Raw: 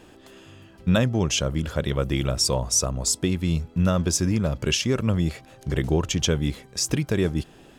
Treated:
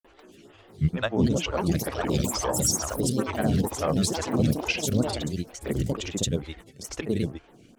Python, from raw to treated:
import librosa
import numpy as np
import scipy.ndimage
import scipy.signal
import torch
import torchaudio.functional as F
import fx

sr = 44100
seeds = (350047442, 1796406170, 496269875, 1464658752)

y = fx.echo_pitch(x, sr, ms=553, semitones=5, count=3, db_per_echo=-3.0)
y = fx.granulator(y, sr, seeds[0], grain_ms=100.0, per_s=20.0, spray_ms=100.0, spread_st=3)
y = fx.stagger_phaser(y, sr, hz=2.2)